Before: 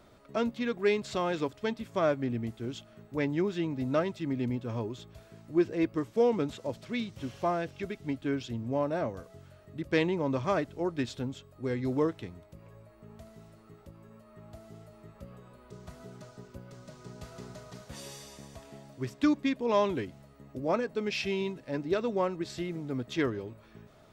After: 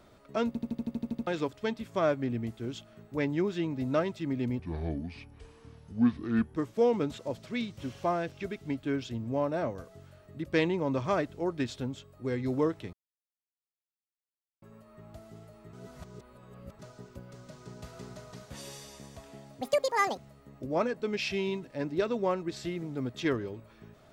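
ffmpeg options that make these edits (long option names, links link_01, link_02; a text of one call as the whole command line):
ffmpeg -i in.wav -filter_complex "[0:a]asplit=19[link_01][link_02][link_03][link_04][link_05][link_06][link_07][link_08][link_09][link_10][link_11][link_12][link_13][link_14][link_15][link_16][link_17][link_18][link_19];[link_01]atrim=end=0.552[link_20];[link_02]atrim=start=0.468:end=0.552[link_21];[link_03]atrim=start=0.468:end=0.552[link_22];[link_04]atrim=start=0.468:end=0.552[link_23];[link_05]atrim=start=0.468:end=0.552[link_24];[link_06]atrim=start=0.468:end=0.552[link_25];[link_07]atrim=start=0.468:end=0.552[link_26];[link_08]atrim=start=0.468:end=0.552[link_27];[link_09]atrim=start=0.468:end=0.552[link_28];[link_10]atrim=start=0.468:end=0.552[link_29];[link_11]atrim=start=1.268:end=4.594[link_30];[link_12]atrim=start=4.59:end=5.95,asetpts=PTS-STARTPTS,asetrate=30429,aresample=44100[link_31];[link_13]atrim=start=5.946:end=12.32,asetpts=PTS-STARTPTS,afade=type=out:start_time=6.37:duration=0.004:curve=hsin[link_32];[link_14]atrim=start=12.32:end=14.01,asetpts=PTS-STARTPTS,volume=0[link_33];[link_15]atrim=start=14.01:end=15.122,asetpts=PTS-STARTPTS,afade=type=in:duration=0.004:curve=hsin[link_34];[link_16]atrim=start=15.118:end=16.182,asetpts=PTS-STARTPTS,areverse[link_35];[link_17]atrim=start=16.178:end=19.004[link_36];[link_18]atrim=start=19:end=20.11,asetpts=PTS-STARTPTS,asetrate=86436,aresample=44100[link_37];[link_19]atrim=start=20.106[link_38];[link_20][link_21]acrossfade=duration=0.004:curve1=hsin:curve2=hsin[link_39];[link_39][link_22]acrossfade=duration=0.004:curve1=hsin:curve2=hsin[link_40];[link_40][link_23]acrossfade=duration=0.004:curve1=hsin:curve2=hsin[link_41];[link_41][link_24]acrossfade=duration=0.004:curve1=hsin:curve2=hsin[link_42];[link_42][link_25]acrossfade=duration=0.004:curve1=hsin:curve2=hsin[link_43];[link_43][link_26]acrossfade=duration=0.004:curve1=hsin:curve2=hsin[link_44];[link_44][link_27]acrossfade=duration=0.004:curve1=hsin:curve2=hsin[link_45];[link_45][link_28]acrossfade=duration=0.004:curve1=hsin:curve2=hsin[link_46];[link_46][link_29]acrossfade=duration=0.004:curve1=hsin:curve2=hsin[link_47];[link_47][link_30]acrossfade=duration=0.004:curve1=hsin:curve2=hsin[link_48];[link_48][link_31]acrossfade=duration=0.004:curve1=hsin:curve2=hsin[link_49];[link_32][link_33][link_34]concat=n=3:v=0:a=1[link_50];[link_49][link_50]acrossfade=duration=0.004:curve1=hsin:curve2=hsin[link_51];[link_51][link_35]acrossfade=duration=0.004:curve1=hsin:curve2=hsin[link_52];[link_52][link_36]acrossfade=duration=0.004:curve1=hsin:curve2=hsin[link_53];[link_53][link_37]acrossfade=duration=0.004:curve1=hsin:curve2=hsin[link_54];[link_54][link_38]acrossfade=duration=0.004:curve1=hsin:curve2=hsin" out.wav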